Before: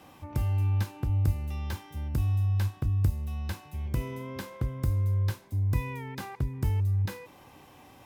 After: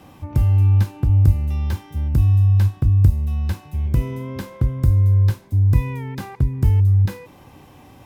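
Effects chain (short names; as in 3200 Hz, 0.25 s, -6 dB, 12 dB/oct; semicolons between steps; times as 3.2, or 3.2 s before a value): low shelf 320 Hz +9 dB; gain +3.5 dB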